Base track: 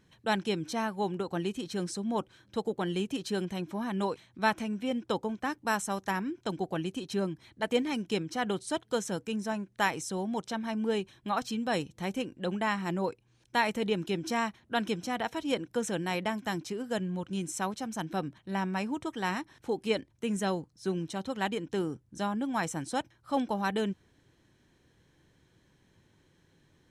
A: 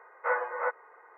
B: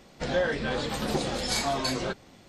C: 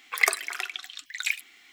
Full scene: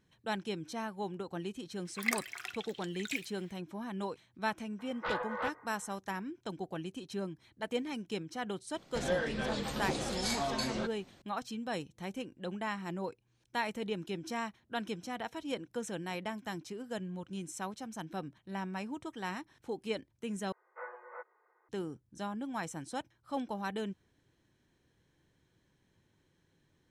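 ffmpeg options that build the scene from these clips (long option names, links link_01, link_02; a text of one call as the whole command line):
ffmpeg -i bed.wav -i cue0.wav -i cue1.wav -i cue2.wav -filter_complex "[1:a]asplit=2[link_01][link_02];[0:a]volume=-7dB[link_03];[link_01]aeval=exprs='0.141*sin(PI/2*2.24*val(0)/0.141)':channel_layout=same[link_04];[link_02]equalizer=frequency=360:width=6.7:gain=10.5[link_05];[link_03]asplit=2[link_06][link_07];[link_06]atrim=end=20.524[link_08];[link_05]atrim=end=1.17,asetpts=PTS-STARTPTS,volume=-17dB[link_09];[link_07]atrim=start=21.686[link_10];[3:a]atrim=end=1.72,asetpts=PTS-STARTPTS,volume=-10.5dB,afade=type=in:duration=0.004:curve=hsin,afade=type=out:start_time=1.716:duration=0.004:curve=hsin,adelay=1850[link_11];[link_04]atrim=end=1.17,asetpts=PTS-STARTPTS,volume=-14dB,afade=type=in:duration=0.004:curve=hsin,afade=type=out:start_time=1.166:duration=0.004:curve=hsin,adelay=4790[link_12];[2:a]atrim=end=2.48,asetpts=PTS-STARTPTS,volume=-6.5dB,afade=type=in:duration=0.004:curve=hsin,afade=type=out:start_time=2.476:duration=0.004:curve=hsin,adelay=385434S[link_13];[link_08][link_09]acrossfade=duration=0.004:curve1=hsin:curve2=hsin[link_14];[link_14][link_10]acrossfade=duration=0.004:curve1=hsin:curve2=hsin[link_15];[link_15][link_11][link_12][link_13]amix=inputs=4:normalize=0" out.wav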